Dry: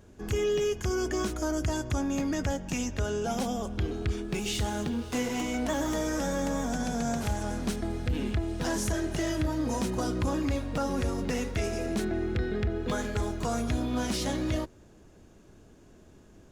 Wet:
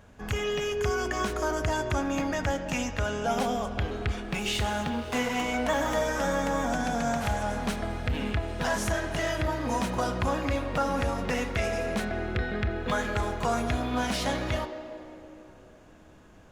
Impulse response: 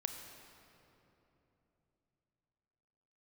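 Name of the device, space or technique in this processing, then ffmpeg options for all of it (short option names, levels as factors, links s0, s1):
filtered reverb send: -filter_complex "[0:a]asplit=2[s0][s1];[s1]highpass=f=360:w=0.5412,highpass=f=360:w=1.3066,lowpass=3500[s2];[1:a]atrim=start_sample=2205[s3];[s2][s3]afir=irnorm=-1:irlink=0,volume=1.33[s4];[s0][s4]amix=inputs=2:normalize=0"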